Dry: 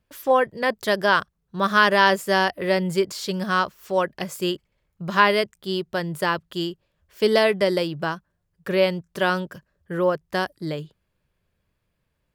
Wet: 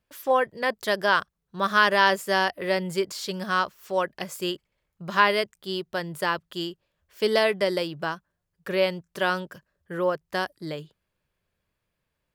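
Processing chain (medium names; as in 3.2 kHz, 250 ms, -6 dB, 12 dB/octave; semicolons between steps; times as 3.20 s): bass shelf 320 Hz -6 dB; trim -2 dB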